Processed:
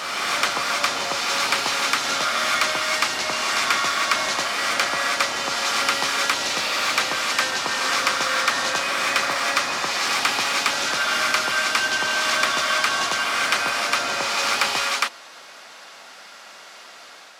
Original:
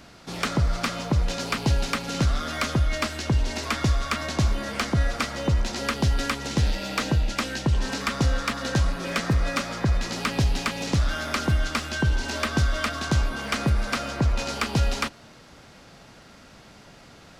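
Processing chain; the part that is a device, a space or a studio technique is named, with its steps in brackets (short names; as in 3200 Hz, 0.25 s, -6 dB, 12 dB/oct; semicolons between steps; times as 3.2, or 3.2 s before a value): ghost voice (reverse; reverb RT60 2.5 s, pre-delay 68 ms, DRR -2 dB; reverse; HPF 790 Hz 12 dB/oct); gain +6 dB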